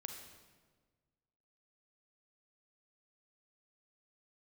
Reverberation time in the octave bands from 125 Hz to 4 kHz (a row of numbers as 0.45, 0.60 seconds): 1.9, 1.7, 1.6, 1.4, 1.2, 1.1 seconds